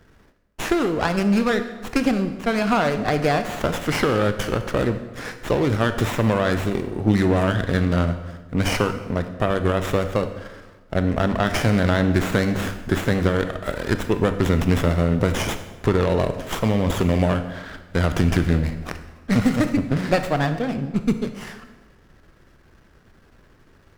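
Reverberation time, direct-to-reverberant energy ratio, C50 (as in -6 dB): 1.3 s, 8.5 dB, 10.5 dB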